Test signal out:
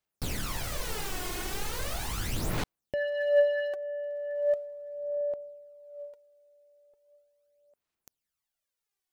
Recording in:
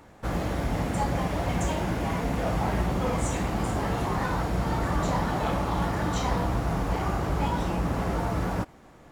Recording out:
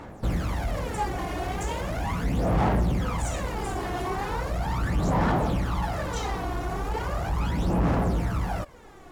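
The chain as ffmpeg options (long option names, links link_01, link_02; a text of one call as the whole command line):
ffmpeg -i in.wav -filter_complex "[0:a]asplit=2[link_01][link_02];[link_02]acompressor=threshold=-32dB:ratio=6,volume=-0.5dB[link_03];[link_01][link_03]amix=inputs=2:normalize=0,asoftclip=type=tanh:threshold=-22dB,aphaser=in_gain=1:out_gain=1:delay=2.8:decay=0.63:speed=0.38:type=sinusoidal,volume=-3.5dB" out.wav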